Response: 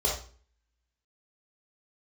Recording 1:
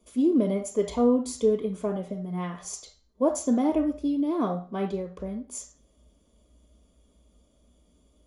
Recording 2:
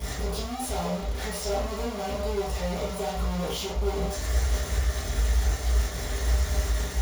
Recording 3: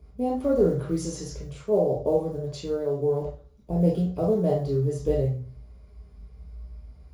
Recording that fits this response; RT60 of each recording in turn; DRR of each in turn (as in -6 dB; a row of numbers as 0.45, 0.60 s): 3; 0.40, 0.40, 0.40 s; 5.5, -10.0, -4.0 dB